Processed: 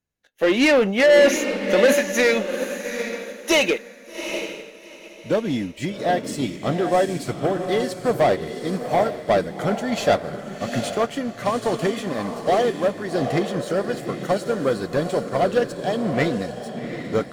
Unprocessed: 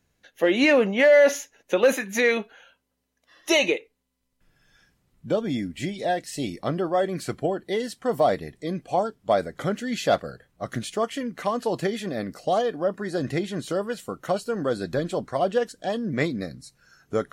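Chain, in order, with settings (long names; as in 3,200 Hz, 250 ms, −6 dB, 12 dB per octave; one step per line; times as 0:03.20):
leveller curve on the samples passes 2
feedback delay with all-pass diffusion 777 ms, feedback 40%, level −5 dB
expander for the loud parts 1.5 to 1, over −33 dBFS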